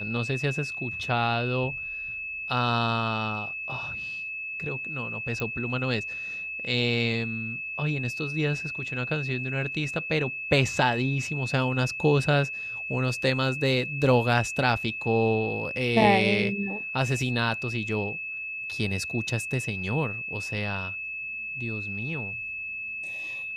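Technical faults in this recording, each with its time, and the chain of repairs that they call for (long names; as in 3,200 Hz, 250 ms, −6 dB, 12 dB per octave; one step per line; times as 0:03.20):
whistle 2,600 Hz −32 dBFS
0:05.40: click −17 dBFS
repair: click removal
notch filter 2,600 Hz, Q 30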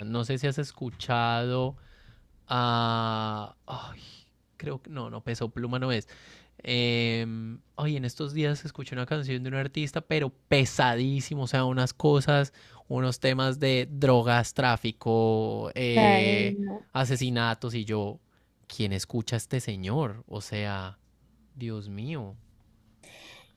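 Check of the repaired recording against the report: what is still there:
none of them is left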